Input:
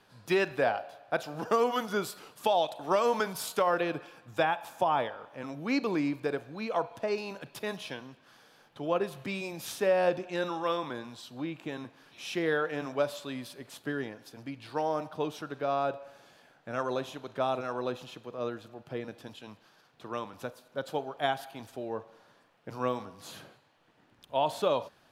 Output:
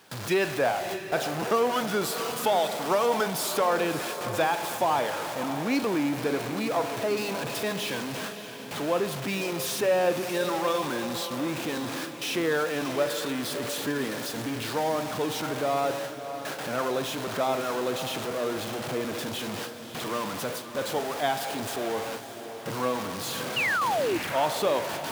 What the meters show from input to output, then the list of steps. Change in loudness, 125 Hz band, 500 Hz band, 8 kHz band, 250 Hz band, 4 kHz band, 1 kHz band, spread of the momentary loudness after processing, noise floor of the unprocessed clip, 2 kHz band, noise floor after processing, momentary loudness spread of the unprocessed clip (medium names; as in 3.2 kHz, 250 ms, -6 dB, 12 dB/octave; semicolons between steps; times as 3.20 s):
+4.0 dB, +5.5 dB, +4.0 dB, +12.5 dB, +5.0 dB, +8.5 dB, +4.0 dB, 7 LU, -64 dBFS, +6.0 dB, -39 dBFS, 16 LU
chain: jump at every zero crossing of -29 dBFS; high-pass 110 Hz 12 dB/octave; gate with hold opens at -29 dBFS; painted sound fall, 23.56–24.18 s, 310–3000 Hz -26 dBFS; on a send: echo that smears into a reverb 614 ms, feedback 48%, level -10 dB